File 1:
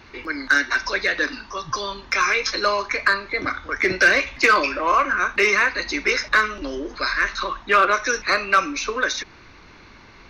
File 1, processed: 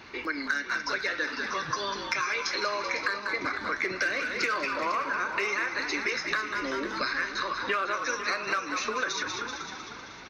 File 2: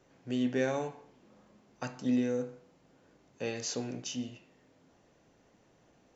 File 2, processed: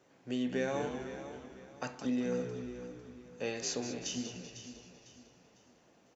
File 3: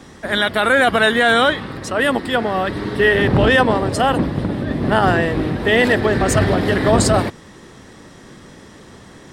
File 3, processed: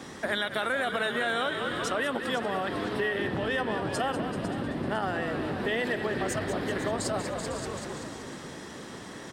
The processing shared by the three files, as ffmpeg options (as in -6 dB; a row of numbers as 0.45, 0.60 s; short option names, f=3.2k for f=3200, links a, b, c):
-filter_complex "[0:a]asplit=2[a][b];[b]asplit=7[c][d][e][f][g][h][i];[c]adelay=192,afreqshift=-64,volume=-10dB[j];[d]adelay=384,afreqshift=-128,volume=-14.9dB[k];[e]adelay=576,afreqshift=-192,volume=-19.8dB[l];[f]adelay=768,afreqshift=-256,volume=-24.6dB[m];[g]adelay=960,afreqshift=-320,volume=-29.5dB[n];[h]adelay=1152,afreqshift=-384,volume=-34.4dB[o];[i]adelay=1344,afreqshift=-448,volume=-39.3dB[p];[j][k][l][m][n][o][p]amix=inputs=7:normalize=0[q];[a][q]amix=inputs=2:normalize=0,acompressor=threshold=-27dB:ratio=6,highpass=f=190:p=1,asplit=2[r][s];[s]aecho=0:1:501|1002|1503|2004:0.251|0.0879|0.0308|0.0108[t];[r][t]amix=inputs=2:normalize=0"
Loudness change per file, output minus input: -9.0, -3.5, -14.0 LU